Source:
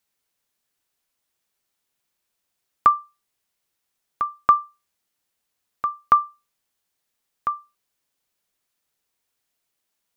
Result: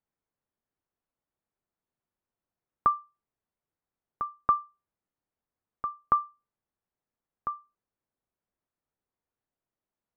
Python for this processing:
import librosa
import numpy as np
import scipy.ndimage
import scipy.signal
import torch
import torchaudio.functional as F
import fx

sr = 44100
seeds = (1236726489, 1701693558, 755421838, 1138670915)

y = scipy.signal.sosfilt(scipy.signal.butter(2, 1300.0, 'lowpass', fs=sr, output='sos'), x)
y = fx.low_shelf(y, sr, hz=350.0, db=5.5)
y = y * 10.0 ** (-6.5 / 20.0)